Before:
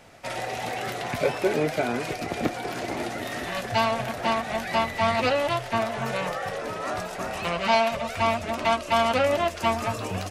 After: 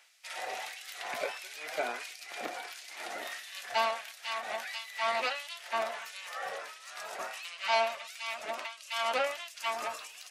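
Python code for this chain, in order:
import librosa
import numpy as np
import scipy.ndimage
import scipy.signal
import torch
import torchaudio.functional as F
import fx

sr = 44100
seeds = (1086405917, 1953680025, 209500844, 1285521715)

y = fx.filter_lfo_highpass(x, sr, shape='sine', hz=1.5, low_hz=540.0, high_hz=3400.0, q=0.71)
y = fx.end_taper(y, sr, db_per_s=130.0)
y = F.gain(torch.from_numpy(y), -4.5).numpy()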